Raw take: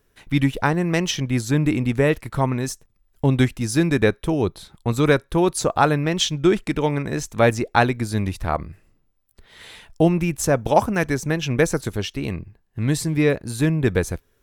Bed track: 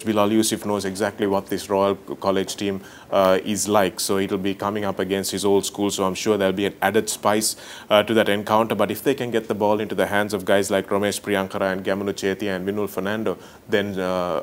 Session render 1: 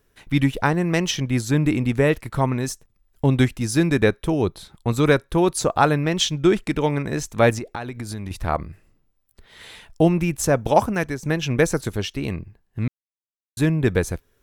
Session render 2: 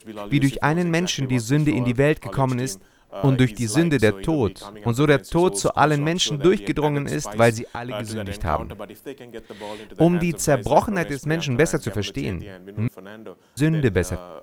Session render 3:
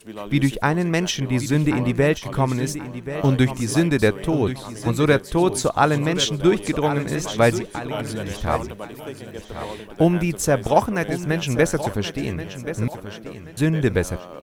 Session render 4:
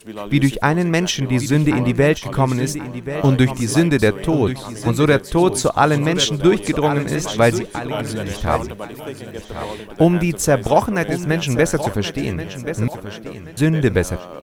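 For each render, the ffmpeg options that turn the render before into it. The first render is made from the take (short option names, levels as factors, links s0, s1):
-filter_complex "[0:a]asettb=1/sr,asplit=3[s0][s1][s2];[s0]atrim=end=7.584[s3];[s1]atrim=start=7.58:end=8.31,asetpts=PTS-STARTPTS,afade=t=in:d=0.004:c=qsin,afade=t=out:st=0.726:d=0.004:c=qsin,acompressor=threshold=0.0501:ratio=8:attack=3.2:release=140:knee=1:detection=peak[s4];[s2]atrim=start=8.306[s5];[s3][s4]acrossfade=d=0.004:c1=hsin:c2=qsin[s6];[s6][s5]acrossfade=d=0.004:c1=qsin:c2=hsin,asplit=4[s7][s8][s9][s10];[s7]atrim=end=11.23,asetpts=PTS-STARTPTS,afade=t=out:st=10.73:d=0.5:c=qsin:silence=0.334965[s11];[s8]atrim=start=11.23:end=12.88,asetpts=PTS-STARTPTS,afade=t=in:d=0.004:c=hsin:silence=0.334965,afade=t=out:st=1.646:d=0.004:c=hsin[s12];[s9]atrim=start=12.88:end=13.57,asetpts=PTS-STARTPTS,volume=0[s13];[s10]atrim=start=13.57,asetpts=PTS-STARTPTS,afade=t=in:d=0.004:c=hsin[s14];[s11][s12][s13][s14]concat=n=4:v=0:a=1"
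-filter_complex "[1:a]volume=0.178[s0];[0:a][s0]amix=inputs=2:normalize=0"
-af "aecho=1:1:1080|2160|3240:0.266|0.0878|0.029"
-af "volume=1.5,alimiter=limit=0.794:level=0:latency=1"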